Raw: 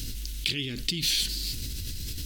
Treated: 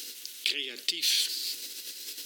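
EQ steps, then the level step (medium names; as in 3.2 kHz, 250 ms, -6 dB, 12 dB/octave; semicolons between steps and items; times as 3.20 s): high-pass 410 Hz 24 dB/octave; 0.0 dB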